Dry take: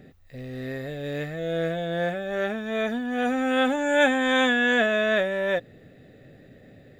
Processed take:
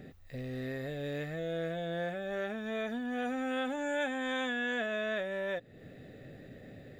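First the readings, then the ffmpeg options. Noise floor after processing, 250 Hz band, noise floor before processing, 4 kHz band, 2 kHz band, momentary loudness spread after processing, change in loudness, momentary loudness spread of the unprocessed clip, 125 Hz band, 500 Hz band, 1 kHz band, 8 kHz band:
-53 dBFS, -10.0 dB, -52 dBFS, -12.0 dB, -11.5 dB, 18 LU, -11.0 dB, 13 LU, -6.5 dB, -10.5 dB, -11.5 dB, -11.5 dB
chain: -af "acompressor=threshold=0.0126:ratio=2.5"

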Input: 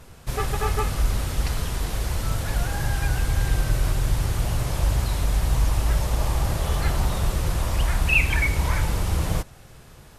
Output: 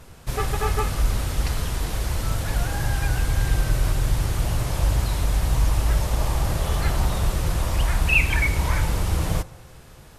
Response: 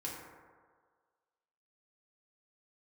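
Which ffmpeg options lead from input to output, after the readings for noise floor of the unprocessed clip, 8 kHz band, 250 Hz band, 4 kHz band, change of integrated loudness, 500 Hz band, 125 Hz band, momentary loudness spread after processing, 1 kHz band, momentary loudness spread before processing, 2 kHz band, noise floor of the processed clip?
-47 dBFS, +0.5 dB, +1.0 dB, +0.5 dB, +0.5 dB, +1.0 dB, +0.5 dB, 5 LU, +1.0 dB, 5 LU, +0.5 dB, -45 dBFS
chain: -filter_complex "[0:a]asplit=2[s0][s1];[1:a]atrim=start_sample=2205[s2];[s1][s2]afir=irnorm=-1:irlink=0,volume=0.15[s3];[s0][s3]amix=inputs=2:normalize=0"

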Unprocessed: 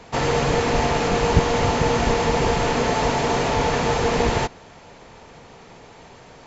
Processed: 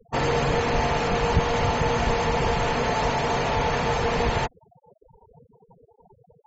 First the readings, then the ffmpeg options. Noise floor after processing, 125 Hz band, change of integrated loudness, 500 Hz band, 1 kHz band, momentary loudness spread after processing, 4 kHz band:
-62 dBFS, -2.5 dB, -3.0 dB, -3.5 dB, -2.0 dB, 1 LU, -3.5 dB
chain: -af "acontrast=75,afftfilt=real='re*gte(hypot(re,im),0.0631)':imag='im*gte(hypot(re,im),0.0631)':win_size=1024:overlap=0.75,adynamicequalizer=threshold=0.0316:dfrequency=310:dqfactor=1.5:tfrequency=310:tqfactor=1.5:attack=5:release=100:ratio=0.375:range=3:mode=cutabove:tftype=bell,volume=0.398"

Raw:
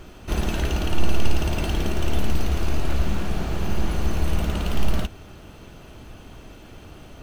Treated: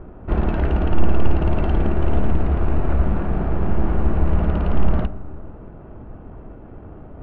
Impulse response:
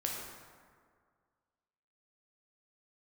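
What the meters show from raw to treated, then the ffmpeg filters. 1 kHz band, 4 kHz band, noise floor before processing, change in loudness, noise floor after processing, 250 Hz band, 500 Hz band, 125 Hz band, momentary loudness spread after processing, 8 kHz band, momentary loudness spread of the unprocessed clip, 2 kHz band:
+4.0 dB, -11.5 dB, -44 dBFS, +4.5 dB, -40 dBFS, +5.0 dB, +5.0 dB, +5.0 dB, 19 LU, under -30 dB, 19 LU, -2.0 dB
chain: -filter_complex "[0:a]asplit=2[s0][s1];[1:a]atrim=start_sample=2205,asetrate=37485,aresample=44100[s2];[s1][s2]afir=irnorm=-1:irlink=0,volume=0.178[s3];[s0][s3]amix=inputs=2:normalize=0,adynamicsmooth=sensitivity=5:basefreq=1100,lowpass=1500,volume=1.5"

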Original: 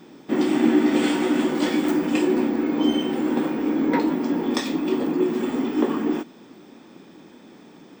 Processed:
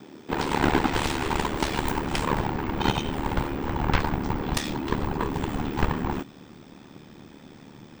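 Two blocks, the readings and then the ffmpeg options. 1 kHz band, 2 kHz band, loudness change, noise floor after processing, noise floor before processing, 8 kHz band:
+3.5 dB, +1.0 dB, -5.0 dB, -49 dBFS, -48 dBFS, +1.0 dB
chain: -af "aeval=exprs='0.447*(cos(1*acos(clip(val(0)/0.447,-1,1)))-cos(1*PI/2))+0.2*(cos(7*acos(clip(val(0)/0.447,-1,1)))-cos(7*PI/2))':c=same,asubboost=boost=7.5:cutoff=110,aeval=exprs='val(0)*sin(2*PI*37*n/s)':c=same,volume=0.708"

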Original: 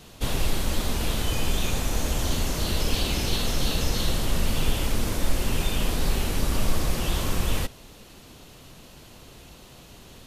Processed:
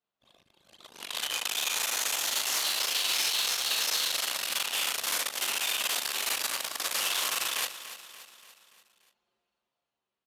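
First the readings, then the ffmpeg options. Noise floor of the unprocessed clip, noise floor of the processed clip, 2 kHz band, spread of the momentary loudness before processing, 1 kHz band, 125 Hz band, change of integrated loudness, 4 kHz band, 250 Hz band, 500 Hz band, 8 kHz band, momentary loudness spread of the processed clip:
-48 dBFS, under -85 dBFS, +2.0 dB, 21 LU, -2.5 dB, under -35 dB, -0.5 dB, +2.5 dB, -23.5 dB, -11.5 dB, +3.5 dB, 7 LU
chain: -filter_complex "[0:a]asoftclip=type=tanh:threshold=0.0668,highshelf=f=2400:g=3,asplit=2[s0][s1];[s1]adelay=41,volume=0.708[s2];[s0][s2]amix=inputs=2:normalize=0,dynaudnorm=f=220:g=11:m=3.76,anlmdn=2510,acompressor=threshold=0.141:ratio=16,highpass=1100,alimiter=limit=0.126:level=0:latency=1:release=86,aecho=1:1:289|578|867|1156|1445:0.224|0.116|0.0605|0.0315|0.0164"

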